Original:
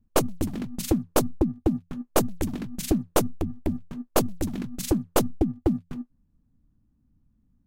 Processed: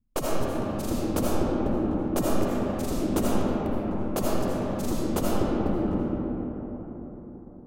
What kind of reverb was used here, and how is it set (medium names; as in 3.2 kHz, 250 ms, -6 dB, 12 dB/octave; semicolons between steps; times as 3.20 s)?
algorithmic reverb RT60 4.8 s, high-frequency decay 0.35×, pre-delay 40 ms, DRR -7.5 dB; trim -8.5 dB